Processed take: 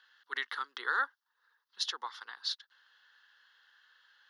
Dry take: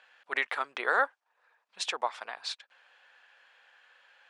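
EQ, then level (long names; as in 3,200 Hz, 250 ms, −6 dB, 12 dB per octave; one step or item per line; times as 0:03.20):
high-pass filter 260 Hz 24 dB per octave
high-shelf EQ 2,300 Hz +11.5 dB
phaser with its sweep stopped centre 2,400 Hz, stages 6
−6.5 dB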